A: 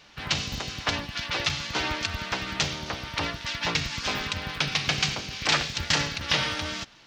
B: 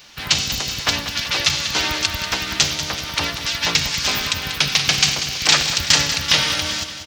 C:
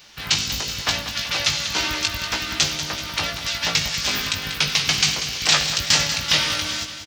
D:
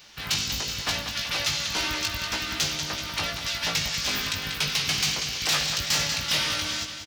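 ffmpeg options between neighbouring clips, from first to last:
ffmpeg -i in.wav -af "aemphasis=mode=production:type=75kf,aecho=1:1:190|380|570|760|950|1140:0.299|0.158|0.0839|0.0444|0.0236|0.0125,volume=3.5dB" out.wav
ffmpeg -i in.wav -filter_complex "[0:a]asplit=2[link_01][link_02];[link_02]adelay=19,volume=-5.5dB[link_03];[link_01][link_03]amix=inputs=2:normalize=0,volume=-3.5dB" out.wav
ffmpeg -i in.wav -af "asoftclip=type=tanh:threshold=-16.5dB,volume=-2.5dB" out.wav

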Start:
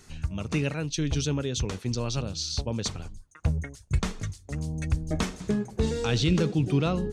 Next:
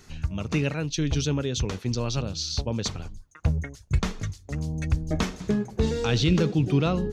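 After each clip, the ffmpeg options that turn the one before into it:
ffmpeg -i in.wav -af "equalizer=frequency=8800:width_type=o:width=0.43:gain=-9,volume=2dB" out.wav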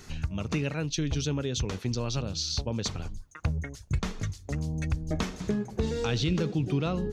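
ffmpeg -i in.wav -af "acompressor=threshold=-35dB:ratio=2,volume=3.5dB" out.wav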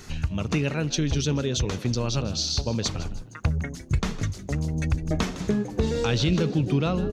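ffmpeg -i in.wav -filter_complex "[0:a]asplit=4[link_01][link_02][link_03][link_04];[link_02]adelay=157,afreqshift=90,volume=-16dB[link_05];[link_03]adelay=314,afreqshift=180,volume=-25.4dB[link_06];[link_04]adelay=471,afreqshift=270,volume=-34.7dB[link_07];[link_01][link_05][link_06][link_07]amix=inputs=4:normalize=0,volume=4.5dB" out.wav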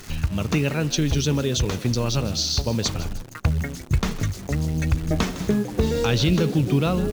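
ffmpeg -i in.wav -af "acrusher=bits=8:dc=4:mix=0:aa=0.000001,volume=3dB" out.wav

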